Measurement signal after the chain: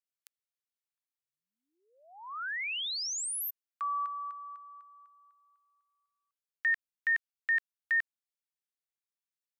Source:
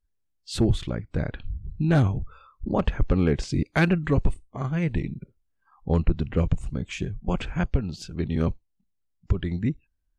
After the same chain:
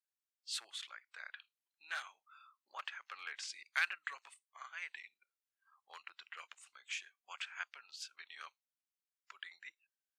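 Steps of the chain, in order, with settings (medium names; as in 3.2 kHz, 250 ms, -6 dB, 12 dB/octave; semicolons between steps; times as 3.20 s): high-pass 1.3 kHz 24 dB/octave; trim -6 dB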